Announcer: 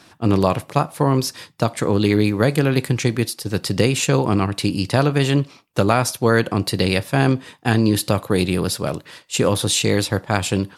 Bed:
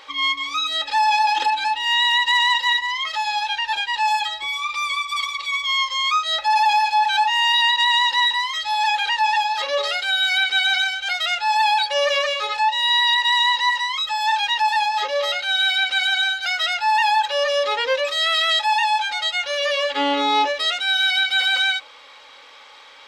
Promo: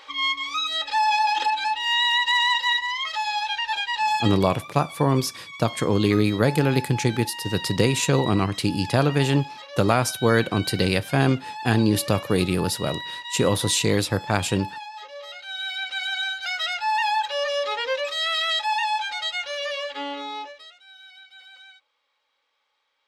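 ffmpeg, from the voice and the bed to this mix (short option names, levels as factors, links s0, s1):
-filter_complex "[0:a]adelay=4000,volume=0.708[s0];[1:a]volume=2.82,afade=t=out:st=4.22:d=0.31:silence=0.199526,afade=t=in:st=15.26:d=1.31:silence=0.251189,afade=t=out:st=19.31:d=1.42:silence=0.0668344[s1];[s0][s1]amix=inputs=2:normalize=0"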